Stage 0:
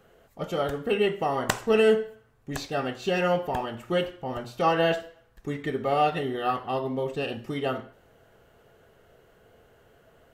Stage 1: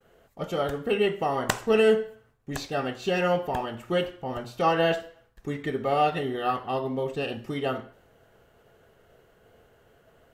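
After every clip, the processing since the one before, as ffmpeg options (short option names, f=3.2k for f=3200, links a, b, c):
-af "agate=range=-33dB:threshold=-56dB:ratio=3:detection=peak"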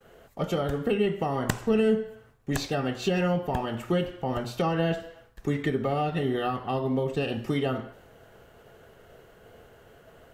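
-filter_complex "[0:a]acrossover=split=270[a][b];[b]acompressor=threshold=-34dB:ratio=5[c];[a][c]amix=inputs=2:normalize=0,volume=6dB"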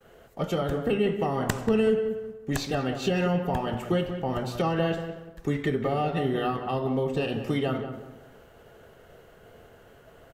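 -filter_complex "[0:a]asplit=2[a][b];[b]adelay=185,lowpass=f=1.5k:p=1,volume=-8dB,asplit=2[c][d];[d]adelay=185,lowpass=f=1.5k:p=1,volume=0.35,asplit=2[e][f];[f]adelay=185,lowpass=f=1.5k:p=1,volume=0.35,asplit=2[g][h];[h]adelay=185,lowpass=f=1.5k:p=1,volume=0.35[i];[a][c][e][g][i]amix=inputs=5:normalize=0"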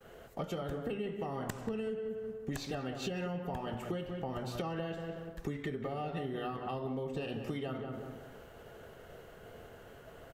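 -af "acompressor=threshold=-36dB:ratio=5"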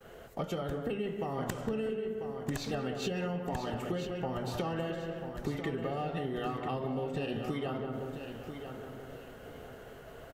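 -af "aecho=1:1:992|1984|2976:0.376|0.109|0.0316,volume=2.5dB"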